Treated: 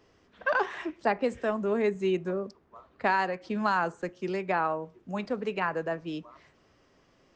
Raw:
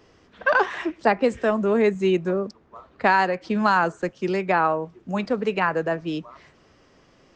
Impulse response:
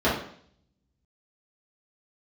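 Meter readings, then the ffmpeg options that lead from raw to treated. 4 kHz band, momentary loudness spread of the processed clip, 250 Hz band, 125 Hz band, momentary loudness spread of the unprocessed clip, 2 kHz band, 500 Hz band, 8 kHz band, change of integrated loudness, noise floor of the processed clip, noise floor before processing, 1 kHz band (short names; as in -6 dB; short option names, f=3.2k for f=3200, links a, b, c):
-7.5 dB, 9 LU, -8.0 dB, -8.0 dB, 9 LU, -7.5 dB, -7.0 dB, n/a, -7.5 dB, -65 dBFS, -57 dBFS, -7.0 dB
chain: -filter_complex "[0:a]asplit=2[a][b];[1:a]atrim=start_sample=2205,asetrate=74970,aresample=44100[c];[b][c]afir=irnorm=-1:irlink=0,volume=-32.5dB[d];[a][d]amix=inputs=2:normalize=0,volume=-7.5dB"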